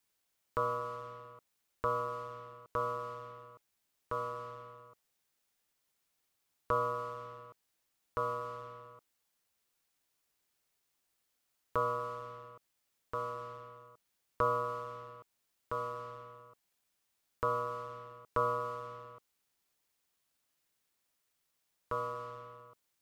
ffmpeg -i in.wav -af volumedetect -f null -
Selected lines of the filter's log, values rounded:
mean_volume: -41.2 dB
max_volume: -16.8 dB